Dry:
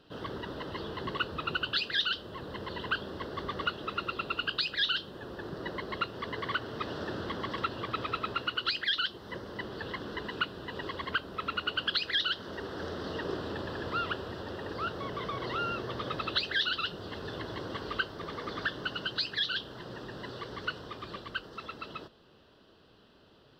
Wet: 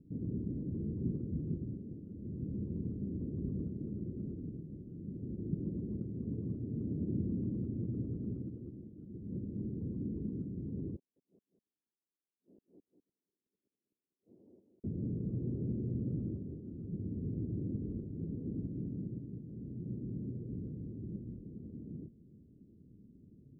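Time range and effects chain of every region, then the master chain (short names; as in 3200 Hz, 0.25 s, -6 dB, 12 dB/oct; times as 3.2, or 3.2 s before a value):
10.96–14.84 HPF 890 Hz + flipped gate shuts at -34 dBFS, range -40 dB + echo 0.2 s -8 dB
whole clip: Wiener smoothing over 25 samples; inverse Chebyshev low-pass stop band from 1500 Hz, stop band 80 dB; low shelf 73 Hz -10.5 dB; gain +10.5 dB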